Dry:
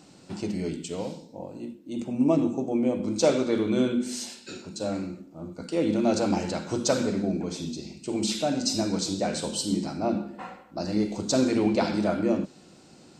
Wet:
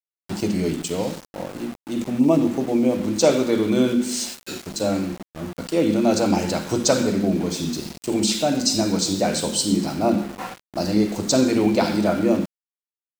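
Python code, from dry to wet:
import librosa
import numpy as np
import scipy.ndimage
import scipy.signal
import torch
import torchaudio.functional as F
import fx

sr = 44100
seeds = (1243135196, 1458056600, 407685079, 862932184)

p1 = fx.high_shelf(x, sr, hz=6400.0, db=3.5)
p2 = fx.rider(p1, sr, range_db=3, speed_s=0.5)
p3 = p1 + F.gain(torch.from_numpy(p2), 0.0).numpy()
y = np.where(np.abs(p3) >= 10.0 ** (-33.0 / 20.0), p3, 0.0)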